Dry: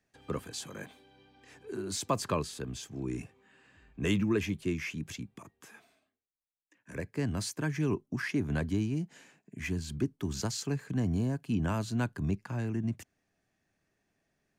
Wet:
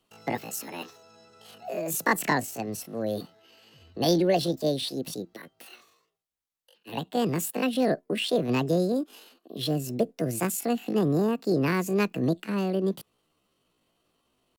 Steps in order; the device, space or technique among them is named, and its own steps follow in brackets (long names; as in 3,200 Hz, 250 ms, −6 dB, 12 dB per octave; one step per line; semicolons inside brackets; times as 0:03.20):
chipmunk voice (pitch shifter +9 semitones)
level +6 dB